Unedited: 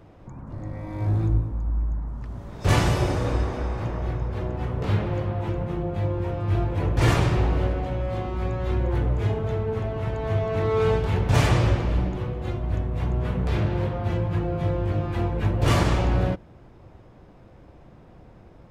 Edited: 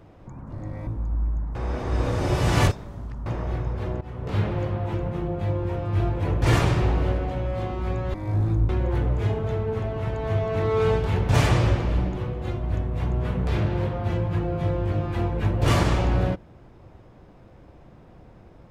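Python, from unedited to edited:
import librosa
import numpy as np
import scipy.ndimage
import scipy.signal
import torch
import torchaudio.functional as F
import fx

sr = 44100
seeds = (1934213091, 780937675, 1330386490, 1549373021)

y = fx.edit(x, sr, fx.move(start_s=0.87, length_s=0.55, to_s=8.69),
    fx.reverse_span(start_s=2.1, length_s=1.71),
    fx.fade_in_from(start_s=4.56, length_s=0.43, floor_db=-13.5), tone=tone)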